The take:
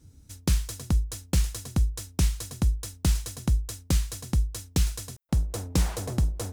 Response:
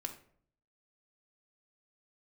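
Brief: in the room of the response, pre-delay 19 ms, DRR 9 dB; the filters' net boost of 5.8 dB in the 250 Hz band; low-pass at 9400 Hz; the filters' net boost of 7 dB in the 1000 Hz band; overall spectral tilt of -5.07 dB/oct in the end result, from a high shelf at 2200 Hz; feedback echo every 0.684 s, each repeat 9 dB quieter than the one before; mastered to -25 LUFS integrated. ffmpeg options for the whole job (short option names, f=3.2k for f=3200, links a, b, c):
-filter_complex "[0:a]lowpass=9.4k,equalizer=f=250:t=o:g=8,equalizer=f=1k:t=o:g=7.5,highshelf=f=2.2k:g=4,aecho=1:1:684|1368|2052|2736:0.355|0.124|0.0435|0.0152,asplit=2[a][b];[1:a]atrim=start_sample=2205,adelay=19[c];[b][c]afir=irnorm=-1:irlink=0,volume=-8dB[d];[a][d]amix=inputs=2:normalize=0,volume=0.5dB"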